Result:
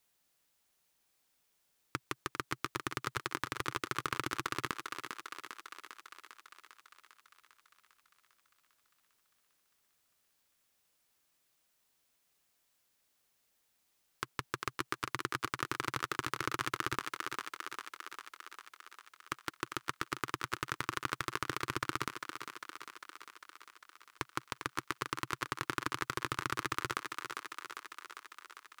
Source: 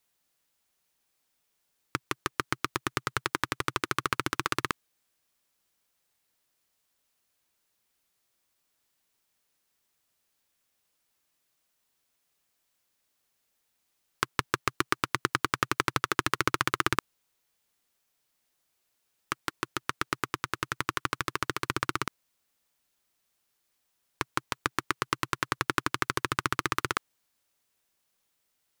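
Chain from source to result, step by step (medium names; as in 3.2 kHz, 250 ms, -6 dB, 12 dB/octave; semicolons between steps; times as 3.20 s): thinning echo 400 ms, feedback 68%, high-pass 320 Hz, level -14 dB; peak limiter -13.5 dBFS, peak gain reduction 10.5 dB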